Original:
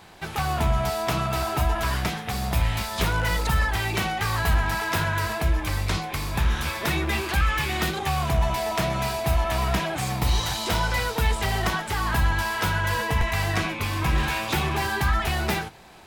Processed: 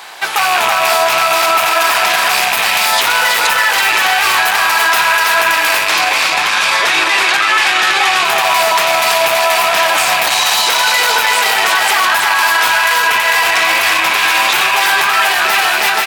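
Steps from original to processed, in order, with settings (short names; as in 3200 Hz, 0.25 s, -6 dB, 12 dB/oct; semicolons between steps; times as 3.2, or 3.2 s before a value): rattling part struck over -30 dBFS, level -20 dBFS; soft clip -20.5 dBFS, distortion -13 dB; HPF 840 Hz 12 dB/oct; echo 0.328 s -3.5 dB; AGC gain up to 5 dB; 5.99–8.25 LPF 8100 Hz 12 dB/oct; echo 0.484 s -10 dB; maximiser +21 dB; gain -2 dB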